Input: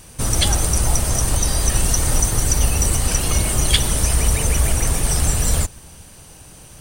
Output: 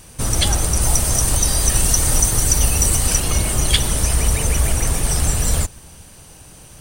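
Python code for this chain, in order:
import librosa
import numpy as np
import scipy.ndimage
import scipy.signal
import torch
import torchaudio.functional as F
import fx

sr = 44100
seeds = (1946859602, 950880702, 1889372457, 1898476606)

y = fx.high_shelf(x, sr, hz=4300.0, db=5.0, at=(0.81, 3.2))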